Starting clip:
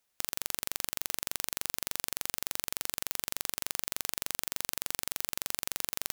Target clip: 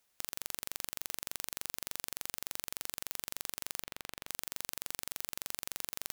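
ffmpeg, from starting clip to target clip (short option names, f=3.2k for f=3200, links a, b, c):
-filter_complex "[0:a]asettb=1/sr,asplit=3[a][b][c];[a]atrim=end=3.834[d];[b]atrim=start=3.83:end=4.28,asetpts=PTS-STARTPTS,afade=t=in:d=0.004:c=qsin,afade=t=out:st=0.446:d=0.004:c=qsin,acrossover=split=1700|3800[e][f][g];[e]acompressor=threshold=-48dB:ratio=4[h];[f]acompressor=threshold=-49dB:ratio=4[i];[g]acompressor=threshold=-50dB:ratio=4[j];[h][i][j]amix=inputs=3:normalize=0[k];[c]atrim=start=4.276[l];[d][k]acrossfade=d=0.004:c1=hsin:c2=qsin[m];[m][l]acrossfade=d=0.004:c1=qsin:c2=hsin,alimiter=level_in=11dB:limit=-1dB:release=50:level=0:latency=1,volume=-8.5dB"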